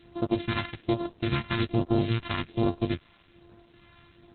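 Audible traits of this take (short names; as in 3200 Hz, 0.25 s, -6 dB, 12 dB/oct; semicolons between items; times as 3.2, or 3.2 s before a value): a buzz of ramps at a fixed pitch in blocks of 128 samples; phasing stages 2, 1.2 Hz, lowest notch 440–2100 Hz; a quantiser's noise floor 10-bit, dither none; Opus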